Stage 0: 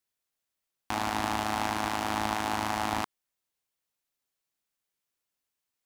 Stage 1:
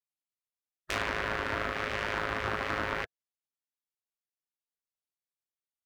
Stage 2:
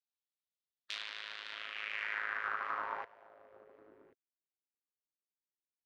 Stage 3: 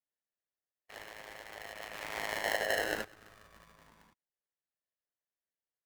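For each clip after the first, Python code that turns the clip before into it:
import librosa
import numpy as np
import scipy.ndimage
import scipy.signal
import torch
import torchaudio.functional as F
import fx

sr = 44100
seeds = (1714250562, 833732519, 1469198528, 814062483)

y1 = fx.spec_gate(x, sr, threshold_db=-10, keep='weak')
y1 = fx.env_lowpass_down(y1, sr, base_hz=990.0, full_db=-30.0)
y1 = fx.leveller(y1, sr, passes=2)
y2 = y1 + 10.0 ** (-18.5 / 20.0) * np.pad(y1, (int(1085 * sr / 1000.0), 0))[:len(y1)]
y2 = fx.filter_sweep_bandpass(y2, sr, from_hz=3700.0, to_hz=310.0, start_s=1.47, end_s=4.14, q=2.8)
y3 = fx.lowpass_res(y2, sr, hz=1200.0, q=4.1)
y3 = y3 * np.sign(np.sin(2.0 * np.pi * 590.0 * np.arange(len(y3)) / sr))
y3 = F.gain(torch.from_numpy(y3), -3.5).numpy()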